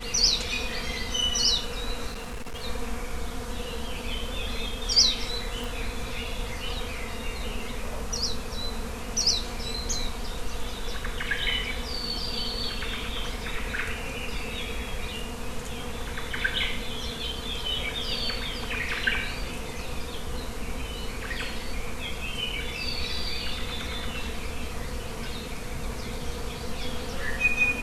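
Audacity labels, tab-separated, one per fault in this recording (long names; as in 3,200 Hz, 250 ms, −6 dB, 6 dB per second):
2.080000	2.640000	clipping −31.5 dBFS
5.640000	5.640000	click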